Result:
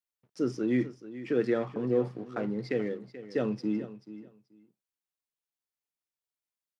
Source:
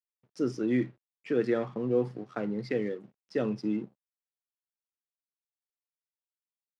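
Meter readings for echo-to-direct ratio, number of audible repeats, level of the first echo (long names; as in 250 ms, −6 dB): −14.5 dB, 2, −14.5 dB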